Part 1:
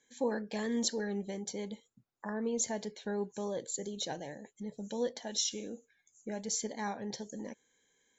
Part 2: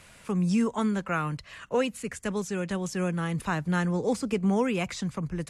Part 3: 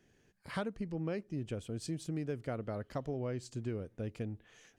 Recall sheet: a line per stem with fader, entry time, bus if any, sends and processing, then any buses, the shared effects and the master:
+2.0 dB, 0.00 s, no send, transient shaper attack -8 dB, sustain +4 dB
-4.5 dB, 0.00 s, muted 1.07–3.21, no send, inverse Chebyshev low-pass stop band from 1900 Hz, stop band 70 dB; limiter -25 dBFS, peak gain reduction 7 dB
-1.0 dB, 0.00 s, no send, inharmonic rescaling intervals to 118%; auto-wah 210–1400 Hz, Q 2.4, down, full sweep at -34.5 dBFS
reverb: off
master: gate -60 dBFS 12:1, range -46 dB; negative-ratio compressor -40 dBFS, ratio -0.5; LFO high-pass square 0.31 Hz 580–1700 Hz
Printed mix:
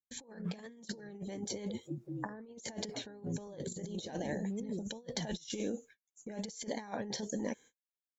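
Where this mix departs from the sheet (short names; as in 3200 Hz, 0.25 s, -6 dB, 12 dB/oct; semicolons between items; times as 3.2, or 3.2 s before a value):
stem 1: missing transient shaper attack -8 dB, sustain +4 dB; stem 2 -4.5 dB -> -12.5 dB; master: missing LFO high-pass square 0.31 Hz 580–1700 Hz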